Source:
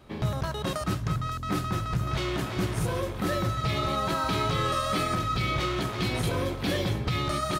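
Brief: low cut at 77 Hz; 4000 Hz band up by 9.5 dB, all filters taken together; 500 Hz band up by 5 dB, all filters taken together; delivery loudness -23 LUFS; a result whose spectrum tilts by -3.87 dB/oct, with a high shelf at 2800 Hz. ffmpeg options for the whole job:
-af "highpass=77,equalizer=f=500:t=o:g=6,highshelf=f=2.8k:g=7.5,equalizer=f=4k:t=o:g=5.5,volume=1.5dB"

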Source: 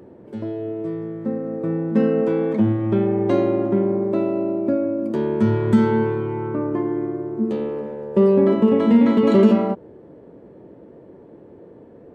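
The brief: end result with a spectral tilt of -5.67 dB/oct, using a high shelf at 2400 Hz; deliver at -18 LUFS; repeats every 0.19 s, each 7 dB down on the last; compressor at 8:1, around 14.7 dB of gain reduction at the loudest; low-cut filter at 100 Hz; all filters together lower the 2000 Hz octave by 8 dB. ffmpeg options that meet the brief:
-af "highpass=100,equalizer=f=2k:t=o:g=-8.5,highshelf=f=2.4k:g=-5,acompressor=threshold=-26dB:ratio=8,aecho=1:1:190|380|570|760|950:0.447|0.201|0.0905|0.0407|0.0183,volume=11dB"

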